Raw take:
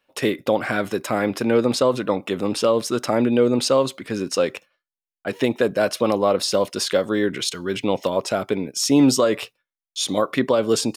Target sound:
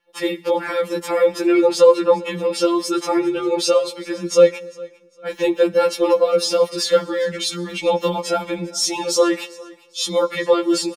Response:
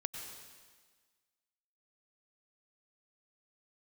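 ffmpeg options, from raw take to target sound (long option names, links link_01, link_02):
-filter_complex "[0:a]highshelf=frequency=8800:gain=-4,aecho=1:1:3.6:0.63,dynaudnorm=framelen=270:gausssize=5:maxgain=5.5dB,aecho=1:1:401|802:0.0794|0.0207,asplit=2[link_01][link_02];[1:a]atrim=start_sample=2205,asetrate=52920,aresample=44100[link_03];[link_02][link_03]afir=irnorm=-1:irlink=0,volume=-15dB[link_04];[link_01][link_04]amix=inputs=2:normalize=0,afftfilt=real='re*2.83*eq(mod(b,8),0)':imag='im*2.83*eq(mod(b,8),0)':win_size=2048:overlap=0.75"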